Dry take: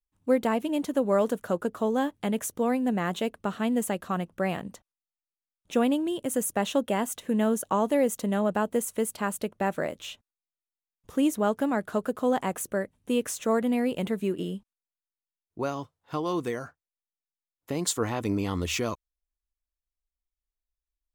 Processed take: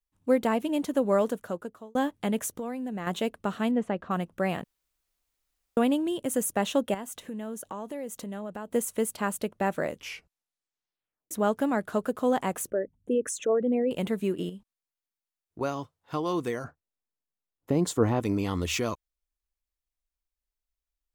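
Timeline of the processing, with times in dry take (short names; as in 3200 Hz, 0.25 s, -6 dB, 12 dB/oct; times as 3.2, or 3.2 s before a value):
1.14–1.95 fade out linear
2.48–3.07 compressor 5:1, threshold -31 dBFS
3.71–4.11 Bessel low-pass 1900 Hz
4.64–5.77 room tone
6.94–8.74 compressor 3:1, threshold -37 dBFS
9.84 tape stop 1.47 s
12.7–13.91 formant sharpening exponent 2
14.49–15.61 compressor, threshold -38 dBFS
16.64–18.2 tilt shelf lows +7 dB, about 1100 Hz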